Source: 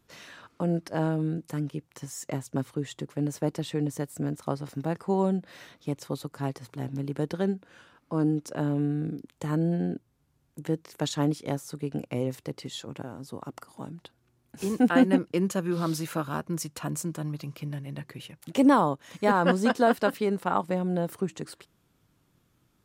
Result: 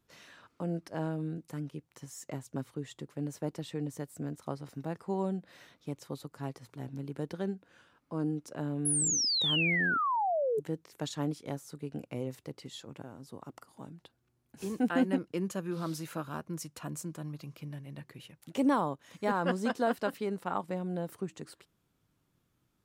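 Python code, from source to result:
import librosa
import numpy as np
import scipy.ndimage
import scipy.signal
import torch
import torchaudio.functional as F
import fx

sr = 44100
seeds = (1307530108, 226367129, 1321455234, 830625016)

y = fx.spec_paint(x, sr, seeds[0], shape='fall', start_s=8.85, length_s=1.75, low_hz=410.0, high_hz=11000.0, level_db=-22.0)
y = F.gain(torch.from_numpy(y), -7.5).numpy()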